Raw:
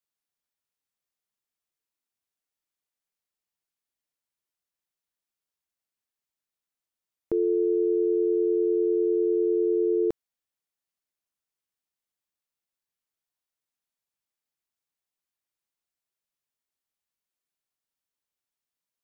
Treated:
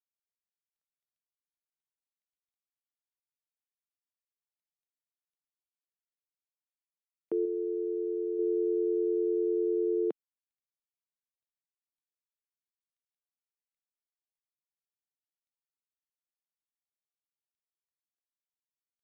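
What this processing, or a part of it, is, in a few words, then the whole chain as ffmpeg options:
Bluetooth headset: -filter_complex "[0:a]asettb=1/sr,asplit=3[a][b][c];[a]atrim=end=7.454[d];[b]atrim=start=7.45:end=8.39,asetpts=PTS-STARTPTS,afade=t=in:d=0.004:c=qsin,afade=t=out:st=0.936:d=0.004:c=qsin,equalizer=f=360:w=0.51:g=-4[e];[c]atrim=start=8.386[f];[d][e]acrossfade=d=0.004:c1=hsin:c2=qsin[g];[g][f]acrossfade=d=0.004:c1=qsin:c2=hsin,highpass=f=200:w=0.5412,highpass=f=200:w=1.3066,aresample=8000,aresample=44100,volume=-5dB" -ar 32000 -c:a sbc -b:a 64k

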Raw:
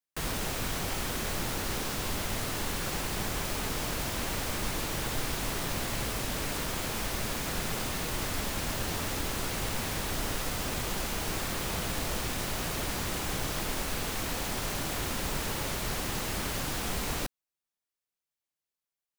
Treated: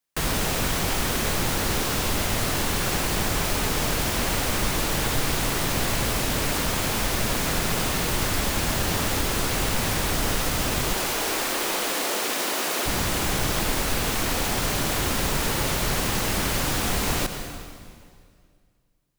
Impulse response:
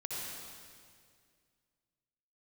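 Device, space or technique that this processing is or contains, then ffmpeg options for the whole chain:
ducked reverb: -filter_complex "[0:a]asettb=1/sr,asplit=3[a][b][c];[a]atrim=end=10.944[d];[b]atrim=start=10.94:end=12.86,asetpts=PTS-STARTPTS,afade=t=in:d=0.004:c=qsin,afade=t=out:st=1.916:d=0.004:c=qsin,highpass=f=280:w=0.5412,highpass=f=280:w=1.3066[e];[c]atrim=start=12.856[f];[d][e]acrossfade=d=0.004:c1=hsin:c2=qsin[g];[g][f]acrossfade=d=0.004:c1=qsin:c2=hsin,asplit=3[h][i][j];[1:a]atrim=start_sample=2205[k];[i][k]afir=irnorm=-1:irlink=0[l];[j]apad=whole_len=845845[m];[l][m]sidechaincompress=threshold=-35dB:ratio=8:attack=39:release=131,volume=-6dB[n];[h][n]amix=inputs=2:normalize=0,volume=6.5dB"

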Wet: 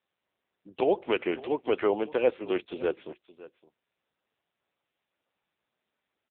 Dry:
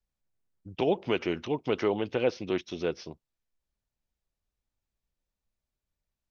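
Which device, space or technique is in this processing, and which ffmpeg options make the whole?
satellite phone: -filter_complex "[0:a]asplit=3[a][b][c];[a]afade=t=out:st=0.95:d=0.02[d];[b]highpass=65,afade=t=in:st=0.95:d=0.02,afade=t=out:st=2.92:d=0.02[e];[c]afade=t=in:st=2.92:d=0.02[f];[d][e][f]amix=inputs=3:normalize=0,highpass=340,lowpass=3.3k,aecho=1:1:563:0.119,volume=4dB" -ar 8000 -c:a libopencore_amrnb -b:a 6700

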